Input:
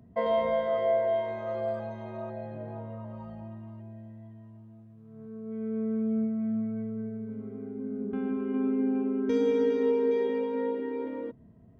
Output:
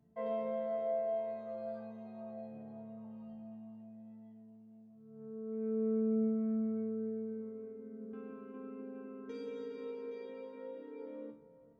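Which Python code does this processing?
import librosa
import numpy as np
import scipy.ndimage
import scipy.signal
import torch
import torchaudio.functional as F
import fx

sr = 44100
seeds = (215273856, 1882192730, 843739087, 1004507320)

y = fx.resonator_bank(x, sr, root=50, chord='minor', decay_s=0.41)
y = fx.echo_banded(y, sr, ms=424, feedback_pct=62, hz=720.0, wet_db=-15.5)
y = y * librosa.db_to_amplitude(4.5)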